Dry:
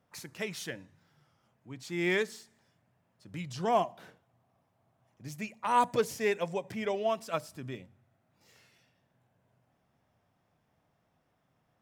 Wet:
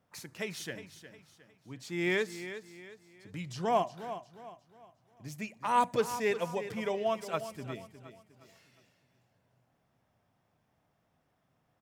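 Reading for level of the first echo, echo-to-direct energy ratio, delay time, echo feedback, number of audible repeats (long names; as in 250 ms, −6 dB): −12.0 dB, −11.5 dB, 359 ms, 37%, 3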